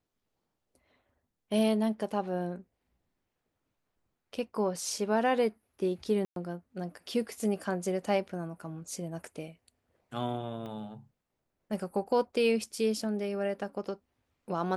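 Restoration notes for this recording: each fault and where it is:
6.25–6.36 gap 0.112 s
10.66 pop -31 dBFS

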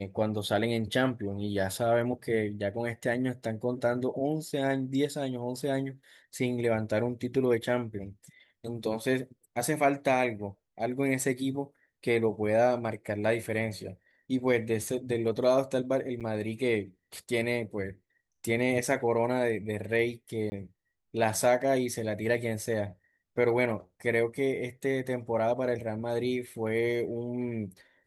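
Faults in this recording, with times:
16.2–16.21 gap 7.3 ms
20.5–20.52 gap 20 ms

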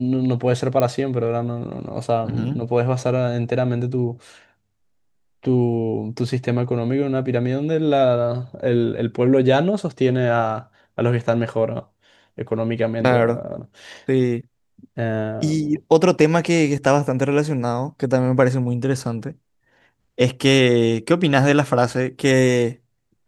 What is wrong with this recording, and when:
0.8 pop -8 dBFS

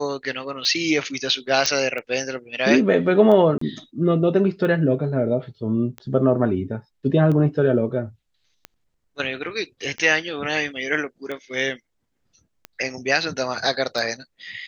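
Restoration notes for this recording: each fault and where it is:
tick 45 rpm -18 dBFS
1.66 pop -5 dBFS
3.58–3.61 gap 34 ms

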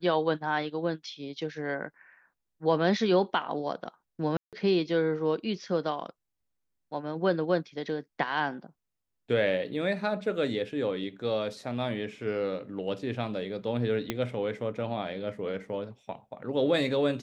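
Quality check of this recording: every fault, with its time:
4.37–4.53 gap 0.157 s
14.1 pop -14 dBFS

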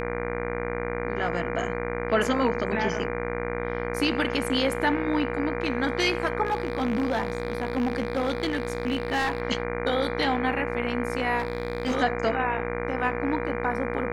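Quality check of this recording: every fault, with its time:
buzz 60 Hz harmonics 40 -32 dBFS
tone 480 Hz -33 dBFS
6.45–9.42 clipped -20.5 dBFS
11.38–11.95 clipped -21 dBFS

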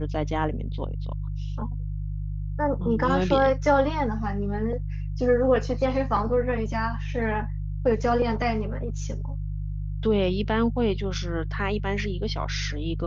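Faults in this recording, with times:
hum 50 Hz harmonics 3 -30 dBFS

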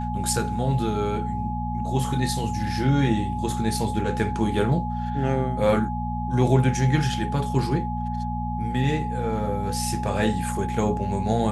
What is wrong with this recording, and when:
hum 60 Hz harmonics 4 -29 dBFS
tone 840 Hz -30 dBFS

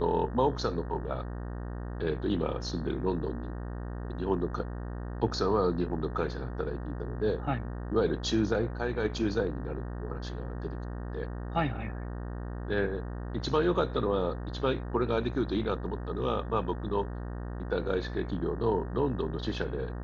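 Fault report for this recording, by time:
buzz 60 Hz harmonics 31 -37 dBFS

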